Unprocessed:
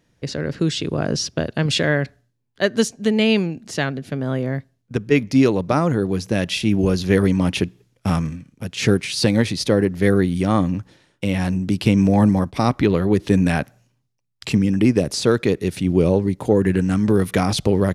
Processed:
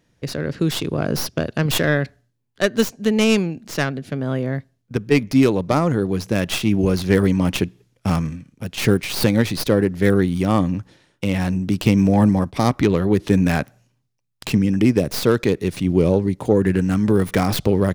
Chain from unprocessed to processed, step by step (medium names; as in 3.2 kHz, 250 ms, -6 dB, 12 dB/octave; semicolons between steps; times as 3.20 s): tracing distortion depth 0.13 ms